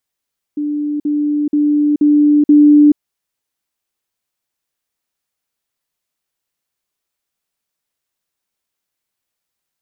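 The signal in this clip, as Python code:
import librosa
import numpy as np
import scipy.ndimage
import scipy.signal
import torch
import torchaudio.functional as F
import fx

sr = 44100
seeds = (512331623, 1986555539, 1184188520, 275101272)

y = fx.level_ladder(sr, hz=295.0, from_db=-16.0, step_db=3.0, steps=5, dwell_s=0.43, gap_s=0.05)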